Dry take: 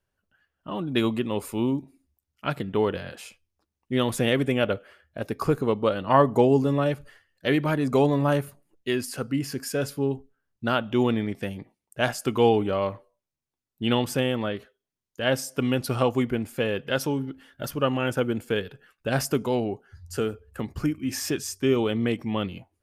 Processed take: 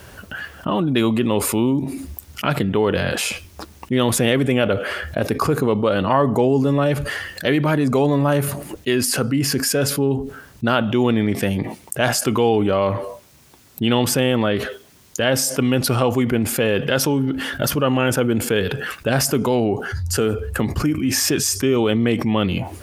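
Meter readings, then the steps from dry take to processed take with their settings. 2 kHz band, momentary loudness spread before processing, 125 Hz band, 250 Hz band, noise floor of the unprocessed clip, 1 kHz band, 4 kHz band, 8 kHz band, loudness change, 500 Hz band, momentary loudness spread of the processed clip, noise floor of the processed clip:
+7.5 dB, 14 LU, +7.5 dB, +7.0 dB, under -85 dBFS, +5.0 dB, +8.5 dB, +14.0 dB, +6.5 dB, +5.5 dB, 8 LU, -47 dBFS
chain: HPF 44 Hz; fast leveller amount 70%

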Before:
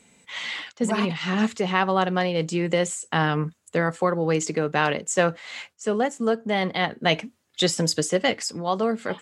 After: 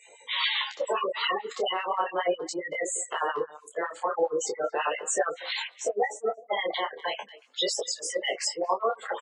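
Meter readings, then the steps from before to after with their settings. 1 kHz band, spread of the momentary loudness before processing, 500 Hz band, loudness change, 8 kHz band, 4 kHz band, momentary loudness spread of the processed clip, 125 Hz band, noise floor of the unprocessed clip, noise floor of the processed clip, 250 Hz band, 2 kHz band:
-3.0 dB, 6 LU, -4.5 dB, -5.0 dB, -2.0 dB, -1.5 dB, 5 LU, under -30 dB, -68 dBFS, -55 dBFS, -17.0 dB, -5.5 dB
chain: bin magnitudes rounded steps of 30 dB; bell 79 Hz +8 dB 0.27 oct; spectral gate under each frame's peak -20 dB strong; compressor 12:1, threshold -27 dBFS, peak gain reduction 12.5 dB; speakerphone echo 0.23 s, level -21 dB; limiter -23 dBFS, peak gain reduction 10.5 dB; LFO high-pass sine 7.3 Hz 310–2600 Hz; graphic EQ 250/500/1000/4000/8000 Hz -10/+9/+11/+9/+6 dB; detuned doubles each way 13 cents

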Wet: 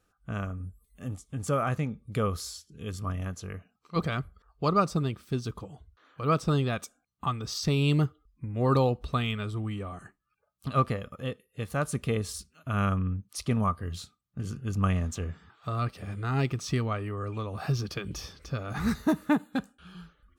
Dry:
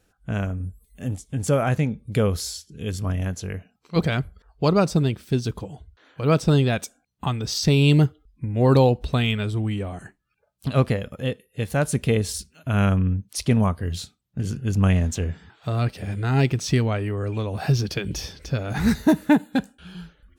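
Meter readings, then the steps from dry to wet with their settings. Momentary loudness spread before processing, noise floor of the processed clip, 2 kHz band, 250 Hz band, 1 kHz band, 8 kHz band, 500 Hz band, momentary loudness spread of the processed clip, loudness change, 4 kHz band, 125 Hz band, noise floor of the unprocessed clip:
14 LU, -75 dBFS, -7.0 dB, -8.0 dB, -1.5 dB, -8.0 dB, -8.0 dB, 15 LU, -7.5 dB, -8.0 dB, -8.0 dB, -69 dBFS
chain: bell 1200 Hz +15 dB 0.22 oct; gain -8 dB

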